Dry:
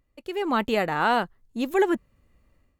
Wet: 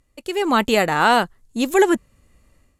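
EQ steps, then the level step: low-pass 12 kHz 24 dB/octave; treble shelf 5.1 kHz +11.5 dB; peaking EQ 7.4 kHz +3.5 dB 0.27 oct; +6.0 dB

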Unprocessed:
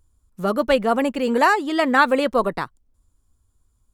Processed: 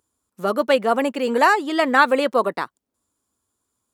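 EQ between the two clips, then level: high-pass 260 Hz 12 dB/octave; +1.0 dB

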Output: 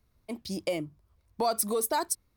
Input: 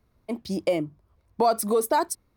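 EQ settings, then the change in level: bass shelf 120 Hz +7.5 dB; treble shelf 2.1 kHz +10 dB; -8.0 dB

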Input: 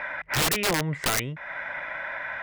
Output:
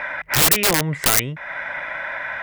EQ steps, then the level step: treble shelf 7.8 kHz +10 dB; +5.0 dB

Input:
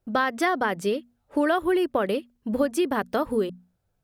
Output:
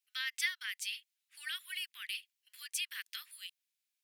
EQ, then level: steep high-pass 2.1 kHz 36 dB/octave; 0.0 dB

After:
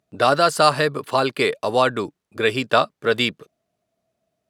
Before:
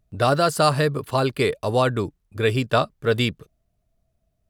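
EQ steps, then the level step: high-pass 260 Hz 12 dB/octave; dynamic bell 400 Hz, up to -4 dB, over -29 dBFS, Q 0.82; treble shelf 11 kHz -11.5 dB; +5.0 dB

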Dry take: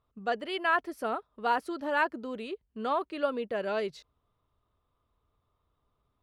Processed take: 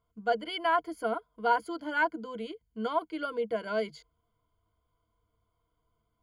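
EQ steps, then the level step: rippled EQ curve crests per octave 1.8, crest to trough 17 dB; -4.0 dB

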